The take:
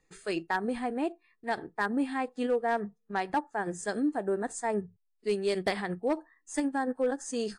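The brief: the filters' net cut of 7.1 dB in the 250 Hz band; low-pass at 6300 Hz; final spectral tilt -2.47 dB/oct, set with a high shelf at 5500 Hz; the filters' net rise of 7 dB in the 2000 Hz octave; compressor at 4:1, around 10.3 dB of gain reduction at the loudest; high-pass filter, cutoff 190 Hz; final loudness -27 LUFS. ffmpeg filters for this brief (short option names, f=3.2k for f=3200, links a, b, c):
-af "highpass=190,lowpass=6.3k,equalizer=f=250:t=o:g=-7.5,equalizer=f=2k:t=o:g=8,highshelf=f=5.5k:g=6.5,acompressor=threshold=-34dB:ratio=4,volume=11.5dB"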